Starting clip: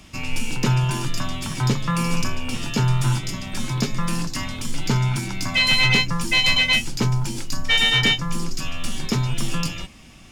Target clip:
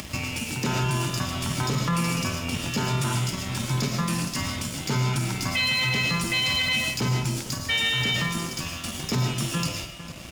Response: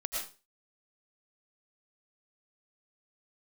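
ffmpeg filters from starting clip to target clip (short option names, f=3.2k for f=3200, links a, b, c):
-filter_complex "[0:a]asplit=2[a][b];[b]adelay=449,volume=-17dB,highshelf=f=4k:g=-10.1[c];[a][c]amix=inputs=2:normalize=0,acompressor=mode=upward:threshold=-22dB:ratio=2.5,highpass=f=59:w=0.5412,highpass=f=59:w=1.3066,equalizer=f=610:t=o:w=0.29:g=2,aeval=exprs='sgn(val(0))*max(abs(val(0))-0.0126,0)':c=same,lowshelf=f=140:g=4,asplit=2[d][e];[e]adelay=50,volume=-13dB[f];[d][f]amix=inputs=2:normalize=0,asplit=2[g][h];[1:a]atrim=start_sample=2205,highshelf=f=9.1k:g=4.5[i];[h][i]afir=irnorm=-1:irlink=0,volume=-3dB[j];[g][j]amix=inputs=2:normalize=0,afftfilt=real='re*lt(hypot(re,im),2.51)':imag='im*lt(hypot(re,im),2.51)':win_size=1024:overlap=0.75,alimiter=limit=-12dB:level=0:latency=1:release=15,volume=-4dB"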